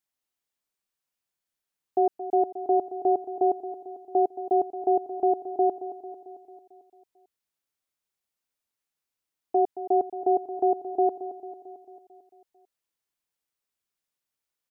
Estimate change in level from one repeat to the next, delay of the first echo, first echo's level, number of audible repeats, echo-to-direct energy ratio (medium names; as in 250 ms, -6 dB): -4.5 dB, 223 ms, -13.0 dB, 5, -11.0 dB